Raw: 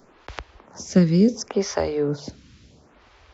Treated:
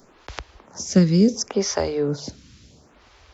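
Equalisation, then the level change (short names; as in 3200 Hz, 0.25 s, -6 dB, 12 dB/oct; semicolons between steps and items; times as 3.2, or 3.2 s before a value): tone controls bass +1 dB, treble +7 dB; 0.0 dB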